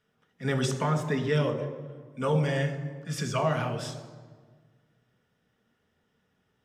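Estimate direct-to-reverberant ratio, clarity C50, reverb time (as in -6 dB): 5.0 dB, 10.0 dB, 1.6 s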